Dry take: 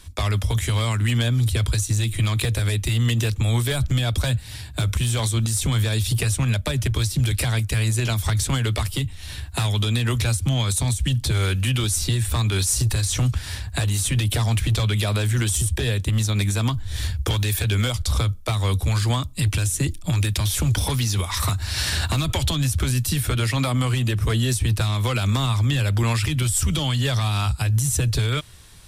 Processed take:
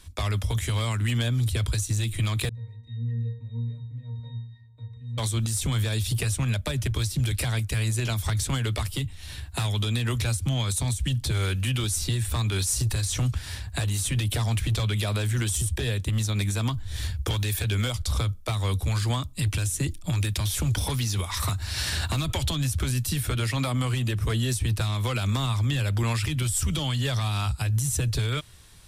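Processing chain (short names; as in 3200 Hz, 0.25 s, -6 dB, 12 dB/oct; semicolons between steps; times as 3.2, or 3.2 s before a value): 2.49–5.18 octave resonator A#, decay 0.58 s; gain -4.5 dB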